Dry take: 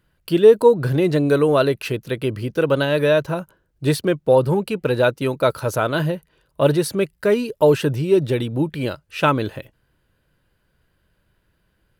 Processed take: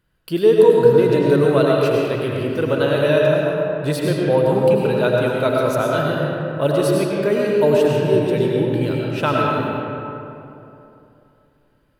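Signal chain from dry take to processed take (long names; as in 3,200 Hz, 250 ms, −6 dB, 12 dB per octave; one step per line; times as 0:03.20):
comb and all-pass reverb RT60 3 s, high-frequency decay 0.5×, pre-delay 60 ms, DRR −3 dB
level −3.5 dB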